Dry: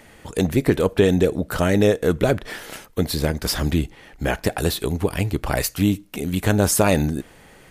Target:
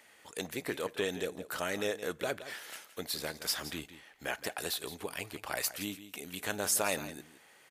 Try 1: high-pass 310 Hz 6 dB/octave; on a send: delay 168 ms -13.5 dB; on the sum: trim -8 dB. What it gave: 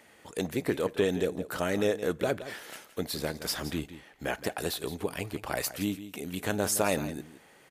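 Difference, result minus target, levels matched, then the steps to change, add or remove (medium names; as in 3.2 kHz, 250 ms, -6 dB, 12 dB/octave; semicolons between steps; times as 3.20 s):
250 Hz band +5.5 dB
change: high-pass 1.2 kHz 6 dB/octave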